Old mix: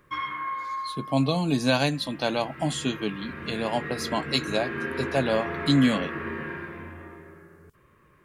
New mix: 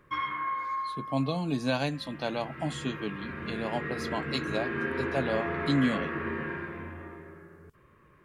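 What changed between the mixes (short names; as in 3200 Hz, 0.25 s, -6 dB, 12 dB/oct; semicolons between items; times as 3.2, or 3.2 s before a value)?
speech -5.5 dB; master: add high shelf 4300 Hz -7 dB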